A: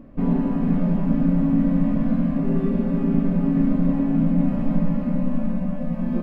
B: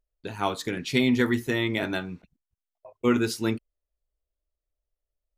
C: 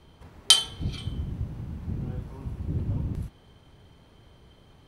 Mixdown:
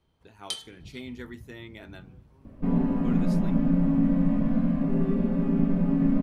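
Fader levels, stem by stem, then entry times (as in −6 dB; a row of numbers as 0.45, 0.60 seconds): −3.5, −17.5, −16.5 decibels; 2.45, 0.00, 0.00 seconds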